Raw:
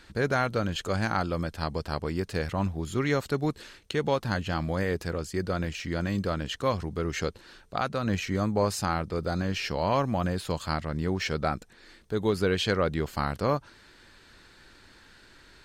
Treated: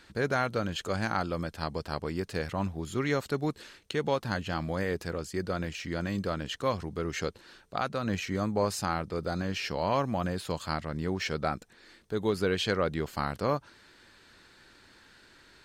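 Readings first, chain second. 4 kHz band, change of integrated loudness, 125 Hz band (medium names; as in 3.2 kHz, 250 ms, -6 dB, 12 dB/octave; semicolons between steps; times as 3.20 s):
-2.0 dB, -2.5 dB, -4.0 dB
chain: bass shelf 63 Hz -10 dB; trim -2 dB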